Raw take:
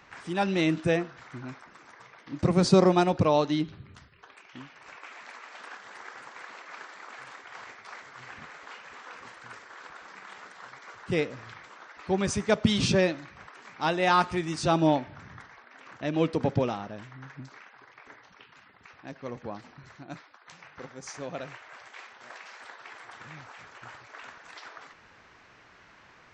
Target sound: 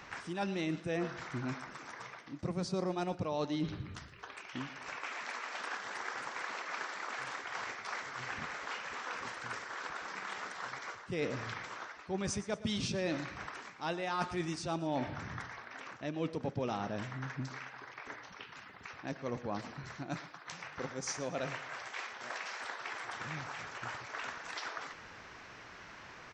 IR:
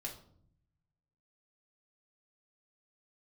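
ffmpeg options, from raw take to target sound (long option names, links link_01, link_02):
-af "equalizer=frequency=5600:width=3.7:gain=3.5,areverse,acompressor=threshold=-37dB:ratio=8,areverse,aecho=1:1:115|230|345|460:0.15|0.0673|0.0303|0.0136,volume=4dB"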